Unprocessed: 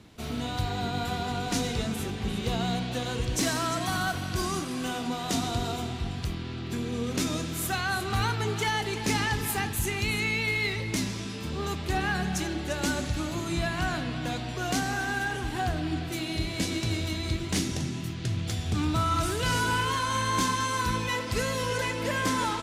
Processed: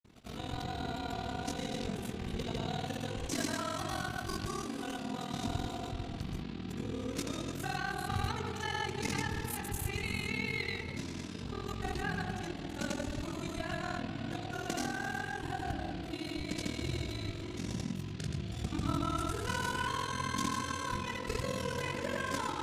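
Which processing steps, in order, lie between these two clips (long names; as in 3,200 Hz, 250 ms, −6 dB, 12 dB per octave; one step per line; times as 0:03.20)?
ring modulation 21 Hz
tape delay 68 ms, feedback 85%, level −5 dB, low-pass 1,300 Hz
granular cloud 100 ms, grains 20 per second, pitch spread up and down by 0 semitones
level −4.5 dB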